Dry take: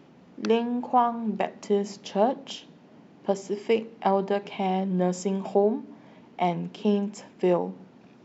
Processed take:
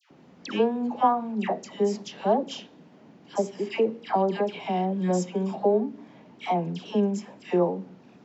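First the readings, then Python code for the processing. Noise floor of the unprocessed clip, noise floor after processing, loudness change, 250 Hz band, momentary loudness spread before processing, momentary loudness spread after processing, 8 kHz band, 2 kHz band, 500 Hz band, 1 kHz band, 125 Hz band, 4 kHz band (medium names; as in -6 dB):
-54 dBFS, -54 dBFS, 0.0 dB, 0.0 dB, 11 LU, 10 LU, no reading, 0.0 dB, 0.0 dB, 0.0 dB, 0.0 dB, 0.0 dB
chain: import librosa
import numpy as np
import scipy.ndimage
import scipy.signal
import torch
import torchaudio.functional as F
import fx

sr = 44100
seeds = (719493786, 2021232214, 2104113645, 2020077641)

y = fx.dispersion(x, sr, late='lows', ms=108.0, hz=1300.0)
y = fx.wow_flutter(y, sr, seeds[0], rate_hz=2.1, depth_cents=29.0)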